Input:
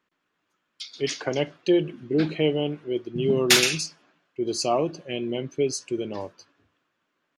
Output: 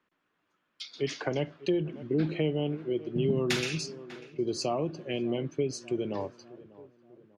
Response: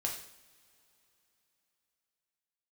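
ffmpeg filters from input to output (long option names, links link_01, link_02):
-filter_complex "[0:a]aemphasis=mode=reproduction:type=50kf,asplit=2[link_01][link_02];[link_02]adelay=594,lowpass=frequency=1100:poles=1,volume=-21dB,asplit=2[link_03][link_04];[link_04]adelay=594,lowpass=frequency=1100:poles=1,volume=0.52,asplit=2[link_05][link_06];[link_06]adelay=594,lowpass=frequency=1100:poles=1,volume=0.52,asplit=2[link_07][link_08];[link_08]adelay=594,lowpass=frequency=1100:poles=1,volume=0.52[link_09];[link_01][link_03][link_05][link_07][link_09]amix=inputs=5:normalize=0,acrossover=split=210[link_10][link_11];[link_11]acompressor=threshold=-28dB:ratio=5[link_12];[link_10][link_12]amix=inputs=2:normalize=0"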